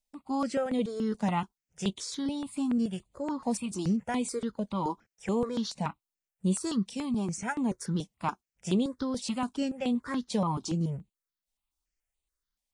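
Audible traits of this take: notches that jump at a steady rate 7 Hz 350–5400 Hz

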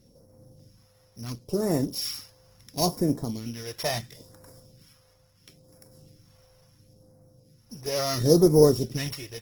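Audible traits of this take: a buzz of ramps at a fixed pitch in blocks of 8 samples; tremolo triangle 0.51 Hz, depth 50%; phasing stages 2, 0.73 Hz, lowest notch 230–3000 Hz; Opus

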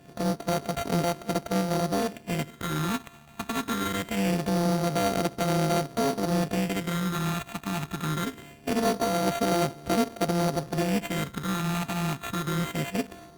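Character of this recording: a buzz of ramps at a fixed pitch in blocks of 64 samples; phasing stages 6, 0.23 Hz, lowest notch 490–4900 Hz; aliases and images of a low sample rate 5200 Hz, jitter 0%; Opus

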